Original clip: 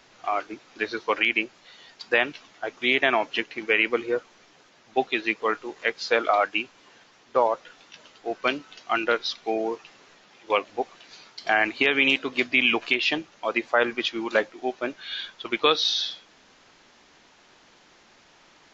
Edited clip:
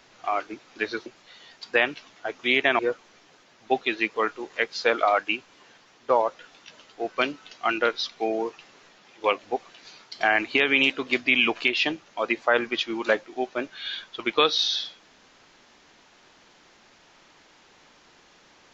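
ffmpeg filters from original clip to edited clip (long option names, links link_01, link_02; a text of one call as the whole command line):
ffmpeg -i in.wav -filter_complex "[0:a]asplit=3[link_01][link_02][link_03];[link_01]atrim=end=1.062[link_04];[link_02]atrim=start=1.438:end=3.172[link_05];[link_03]atrim=start=4.048[link_06];[link_04][link_05]acrossfade=duration=0.004:curve1=hsin:curve2=hsin[link_07];[link_07][link_06]acrossfade=duration=0.004:curve1=hsin:curve2=hsin" out.wav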